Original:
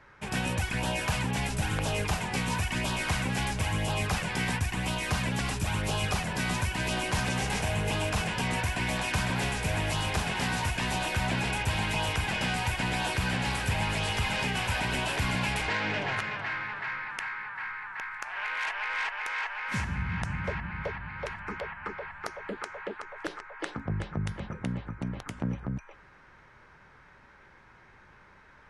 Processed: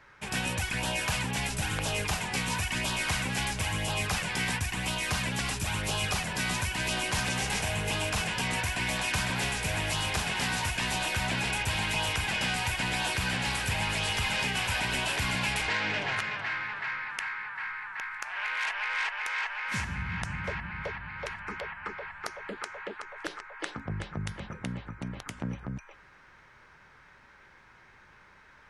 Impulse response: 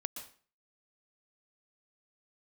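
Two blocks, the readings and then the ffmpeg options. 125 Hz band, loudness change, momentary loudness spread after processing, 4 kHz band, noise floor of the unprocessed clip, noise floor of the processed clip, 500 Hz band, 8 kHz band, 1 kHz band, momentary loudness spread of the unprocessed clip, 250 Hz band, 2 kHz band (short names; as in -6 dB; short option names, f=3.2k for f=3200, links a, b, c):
-3.5 dB, 0.0 dB, 11 LU, +2.5 dB, -56 dBFS, -57 dBFS, -2.5 dB, +3.5 dB, -1.5 dB, 9 LU, -3.5 dB, +1.0 dB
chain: -af "tiltshelf=f=1.4k:g=-3.5"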